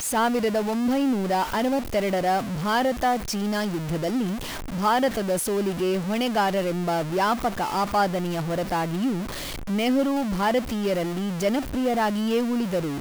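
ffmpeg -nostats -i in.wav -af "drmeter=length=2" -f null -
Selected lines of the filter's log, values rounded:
Channel 1: DR: 9.0
Overall DR: 9.0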